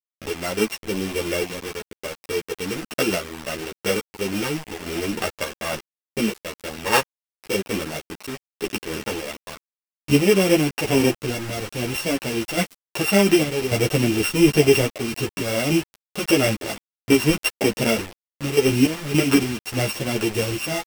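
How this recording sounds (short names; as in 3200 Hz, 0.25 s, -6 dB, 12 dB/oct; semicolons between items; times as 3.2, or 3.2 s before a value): a buzz of ramps at a fixed pitch in blocks of 16 samples; random-step tremolo, depth 70%; a quantiser's noise floor 6-bit, dither none; a shimmering, thickened sound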